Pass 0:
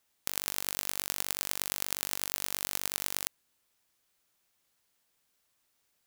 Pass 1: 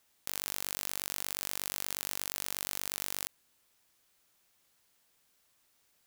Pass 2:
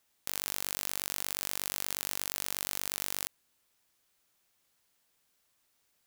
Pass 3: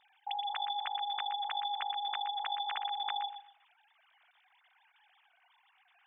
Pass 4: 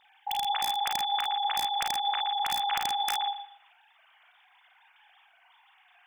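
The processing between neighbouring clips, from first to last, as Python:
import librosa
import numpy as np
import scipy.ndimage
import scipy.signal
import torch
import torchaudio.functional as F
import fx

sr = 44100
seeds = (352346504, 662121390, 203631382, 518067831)

y1 = fx.level_steps(x, sr, step_db=16)
y1 = y1 * 10.0 ** (8.5 / 20.0)
y2 = fx.upward_expand(y1, sr, threshold_db=-48.0, expansion=1.5)
y2 = y2 * 10.0 ** (3.0 / 20.0)
y3 = fx.sine_speech(y2, sr)
y3 = fx.echo_feedback(y3, sr, ms=121, feedback_pct=23, wet_db=-10)
y4 = (np.mod(10.0 ** (25.0 / 20.0) * y3 + 1.0, 2.0) - 1.0) / 10.0 ** (25.0 / 20.0)
y4 = fx.room_early_taps(y4, sr, ms=(36, 51), db=(-7.0, -5.5))
y4 = y4 * 10.0 ** (5.5 / 20.0)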